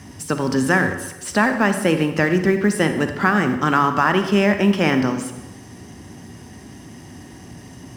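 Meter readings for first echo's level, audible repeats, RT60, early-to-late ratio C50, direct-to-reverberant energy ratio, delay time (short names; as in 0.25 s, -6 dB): none, none, 1.0 s, 8.5 dB, 7.5 dB, none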